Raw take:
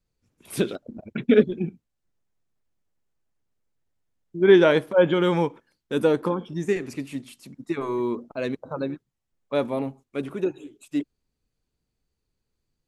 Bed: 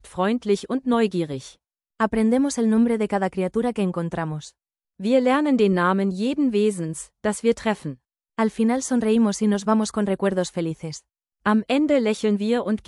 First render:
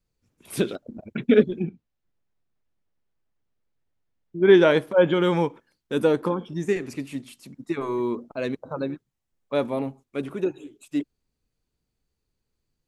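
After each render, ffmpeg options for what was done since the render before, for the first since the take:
-filter_complex "[0:a]asettb=1/sr,asplit=3[s0][s1][s2];[s0]atrim=end=1.644[s3];[s1]atrim=start=1.64:end=4.49,asetpts=PTS-STARTPTS,afade=t=in:d=0.004:c=qsin,afade=t=out:st=2.846:d=0.004:c=qsin,lowpass=4500[s4];[s2]atrim=start=4.486[s5];[s3][s4]acrossfade=d=0.004:c1=hsin:c2=qsin[s6];[s6][s5]acrossfade=d=0.004:c1=qsin:c2=hsin"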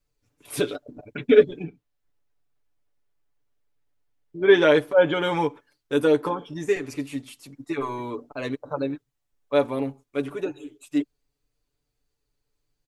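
-af "equalizer=f=180:w=2:g=-10,aecho=1:1:6.9:0.73"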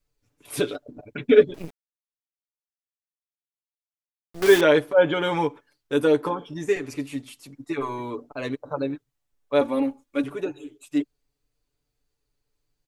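-filter_complex "[0:a]asettb=1/sr,asplit=3[s0][s1][s2];[s0]atrim=end=1.544[s3];[s1]atrim=start=1.54:end=4.61,asetpts=PTS-STARTPTS,afade=t=in:d=0.004:c=qsin,afade=t=out:st=3.066:d=0.004:c=qsin,acrusher=bits=5:dc=4:mix=0:aa=0.000001[s4];[s2]atrim=start=4.606[s5];[s3][s4]acrossfade=d=0.004:c1=hsin:c2=qsin[s6];[s6][s5]acrossfade=d=0.004:c1=qsin:c2=hsin,asettb=1/sr,asplit=3[s7][s8][s9];[s7]atrim=end=9.614[s10];[s8]atrim=start=9.61:end=10.24,asetpts=PTS-STARTPTS,afade=t=in:d=0.004:c=qsin,afade=t=out:st=0.626:d=0.004:c=qsin,aecho=1:1:3.6:0.83,atrim=end_sample=27783[s11];[s9]atrim=start=10.236[s12];[s10][s11]acrossfade=d=0.004:c1=hsin:c2=qsin[s13];[s13][s12]acrossfade=d=0.004:c1=qsin:c2=hsin"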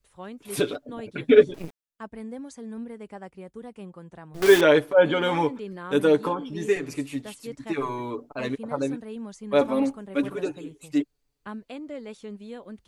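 -filter_complex "[1:a]volume=0.126[s0];[0:a][s0]amix=inputs=2:normalize=0"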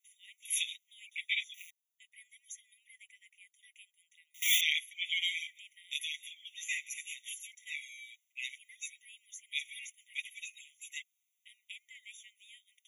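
-af "crystalizer=i=1:c=0,afftfilt=real='re*eq(mod(floor(b*sr/1024/1900),2),1)':imag='im*eq(mod(floor(b*sr/1024/1900),2),1)':win_size=1024:overlap=0.75"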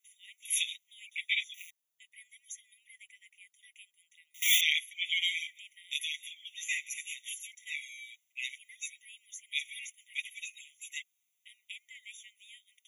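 -af "volume=1.33"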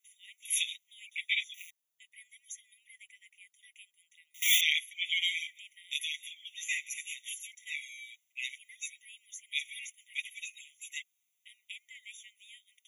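-af anull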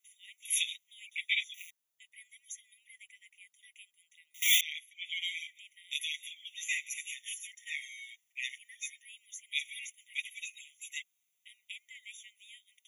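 -filter_complex "[0:a]asplit=3[s0][s1][s2];[s0]afade=t=out:st=7.11:d=0.02[s3];[s1]afreqshift=-100,afade=t=in:st=7.11:d=0.02,afade=t=out:st=9.03:d=0.02[s4];[s2]afade=t=in:st=9.03:d=0.02[s5];[s3][s4][s5]amix=inputs=3:normalize=0,asplit=2[s6][s7];[s6]atrim=end=4.61,asetpts=PTS-STARTPTS,afade=t=out:st=4.606:d=0.004:c=hsin:silence=0.177828[s8];[s7]atrim=start=4.61,asetpts=PTS-STARTPTS,afade=t=in:d=1.56:silence=0.177828[s9];[s8][s9]concat=n=2:v=0:a=1"

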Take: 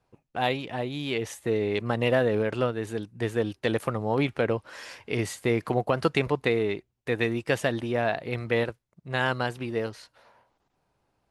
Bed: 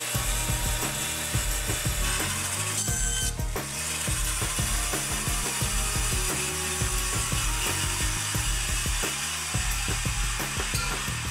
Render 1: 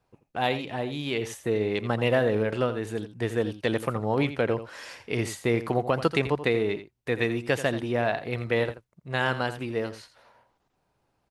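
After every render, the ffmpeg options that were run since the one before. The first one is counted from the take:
-af "aecho=1:1:84:0.237"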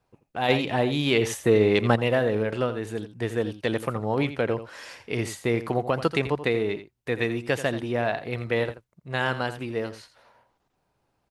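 -filter_complex "[0:a]asplit=3[s0][s1][s2];[s0]afade=t=out:st=0.48:d=0.02[s3];[s1]acontrast=90,afade=t=in:st=0.48:d=0.02,afade=t=out:st=1.95:d=0.02[s4];[s2]afade=t=in:st=1.95:d=0.02[s5];[s3][s4][s5]amix=inputs=3:normalize=0"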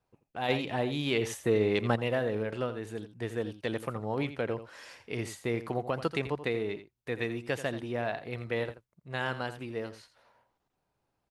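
-af "volume=0.447"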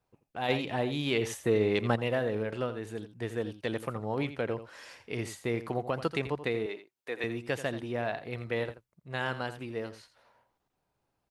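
-filter_complex "[0:a]asettb=1/sr,asplit=3[s0][s1][s2];[s0]atrim=end=6.664[s3];[s1]atrim=start=6.66:end=7.24,asetpts=PTS-STARTPTS,afade=t=in:d=0.004:c=qsin,afade=t=out:st=0.576:d=0.004:c=qsin,highpass=380[s4];[s2]atrim=start=7.236[s5];[s3][s4]acrossfade=d=0.004:c1=hsin:c2=qsin[s6];[s6][s5]acrossfade=d=0.004:c1=qsin:c2=hsin"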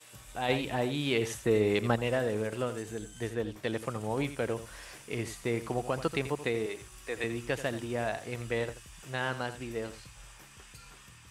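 -filter_complex "[1:a]volume=0.0668[s0];[0:a][s0]amix=inputs=2:normalize=0"

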